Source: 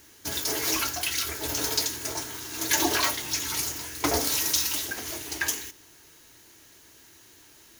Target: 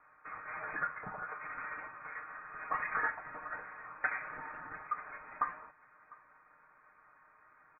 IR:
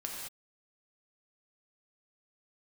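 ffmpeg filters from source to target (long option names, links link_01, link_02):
-filter_complex "[0:a]highpass=frequency=1400:width_type=q:width=2.5,equalizer=frequency=2200:width=0.96:gain=-13,asplit=2[link_01][link_02];[link_02]adelay=699.7,volume=-24dB,highshelf=frequency=4000:gain=-15.7[link_03];[link_01][link_03]amix=inputs=2:normalize=0,asplit=2[link_04][link_05];[link_05]acompressor=threshold=-41dB:ratio=6,volume=-1.5dB[link_06];[link_04][link_06]amix=inputs=2:normalize=0,asoftclip=type=hard:threshold=-15dB,aecho=1:1:6.4:0.58,lowpass=frequency=2400:width_type=q:width=0.5098,lowpass=frequency=2400:width_type=q:width=0.6013,lowpass=frequency=2400:width_type=q:width=0.9,lowpass=frequency=2400:width_type=q:width=2.563,afreqshift=-2800,volume=-3dB"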